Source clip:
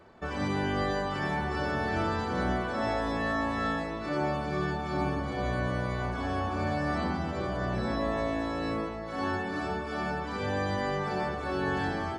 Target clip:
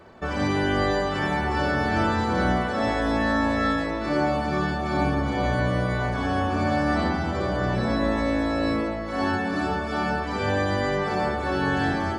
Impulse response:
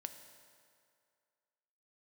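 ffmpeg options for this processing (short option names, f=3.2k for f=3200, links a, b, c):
-filter_complex "[0:a]asplit=2[a][b];[1:a]atrim=start_sample=2205,adelay=58[c];[b][c]afir=irnorm=-1:irlink=0,volume=-4.5dB[d];[a][d]amix=inputs=2:normalize=0,volume=6dB"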